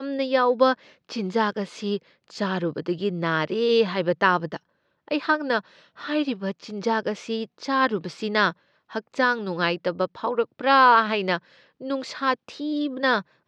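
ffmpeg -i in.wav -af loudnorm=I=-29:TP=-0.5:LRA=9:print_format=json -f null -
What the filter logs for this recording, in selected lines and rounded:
"input_i" : "-23.6",
"input_tp" : "-3.8",
"input_lra" : "3.9",
"input_thresh" : "-34.0",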